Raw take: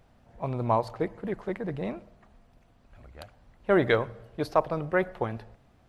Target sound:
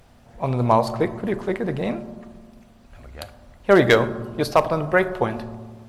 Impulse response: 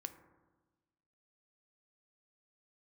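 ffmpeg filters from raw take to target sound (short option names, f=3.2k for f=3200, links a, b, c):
-filter_complex "[0:a]asoftclip=type=hard:threshold=-13dB,asplit=2[a][b];[1:a]atrim=start_sample=2205,asetrate=32193,aresample=44100,highshelf=f=3k:g=10.5[c];[b][c]afir=irnorm=-1:irlink=0,volume=7.5dB[d];[a][d]amix=inputs=2:normalize=0,volume=-1.5dB"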